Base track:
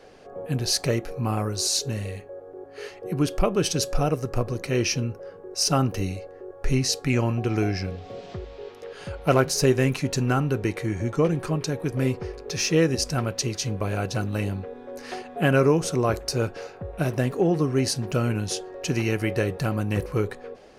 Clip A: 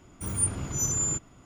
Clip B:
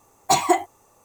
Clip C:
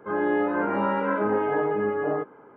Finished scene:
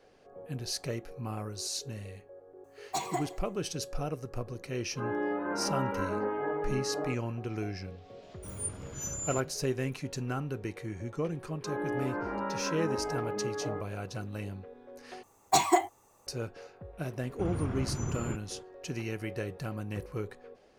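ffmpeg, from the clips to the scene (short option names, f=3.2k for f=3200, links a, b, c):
-filter_complex "[2:a]asplit=2[a][b];[3:a]asplit=2[c][d];[1:a]asplit=2[e][f];[0:a]volume=-11.5dB[g];[a]aecho=1:1:82|164|246|328|410|492:0.158|0.0935|0.0552|0.0326|0.0192|0.0113[h];[e]aeval=exprs='val(0)+0.00398*sin(2*PI*620*n/s)':c=same[i];[f]lowpass=2.3k[j];[g]asplit=2[k][l];[k]atrim=end=15.234[m];[b]atrim=end=1.04,asetpts=PTS-STARTPTS,volume=-5.5dB[n];[l]atrim=start=16.266[o];[h]atrim=end=1.04,asetpts=PTS-STARTPTS,volume=-15dB,afade=t=in:d=0.004:c=hsin,afade=t=out:st=1.036:d=0.004:c=hsin,adelay=2640[p];[c]atrim=end=2.56,asetpts=PTS-STARTPTS,volume=-8.5dB,afade=t=in:d=0.004:c=hsin,afade=t=out:st=2.556:d=0.004:c=hsin,adelay=4910[q];[i]atrim=end=1.45,asetpts=PTS-STARTPTS,volume=-10dB,afade=t=in:d=0.004:c=hsin,afade=t=out:st=1.446:d=0.004:c=hsin,adelay=8220[r];[d]atrim=end=2.56,asetpts=PTS-STARTPTS,volume=-10dB,afade=t=in:d=0.004:c=hsin,afade=t=out:st=2.556:d=0.004:c=hsin,adelay=11580[s];[j]atrim=end=1.45,asetpts=PTS-STARTPTS,volume=-0.5dB,afade=t=in:d=0.004:c=hsin,afade=t=out:st=1.446:d=0.004:c=hsin,adelay=17180[t];[m][n]acrossfade=d=0.004:c1=hsin:c2=hsin[u];[u][o]acrossfade=d=0.004:c1=hsin:c2=hsin[v];[v][p][q][r][s][t]amix=inputs=6:normalize=0"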